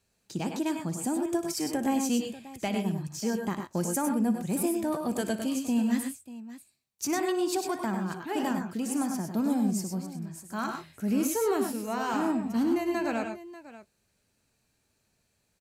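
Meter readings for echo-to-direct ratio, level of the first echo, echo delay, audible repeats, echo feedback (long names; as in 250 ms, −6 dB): −4.5 dB, −14.5 dB, 59 ms, 3, repeats not evenly spaced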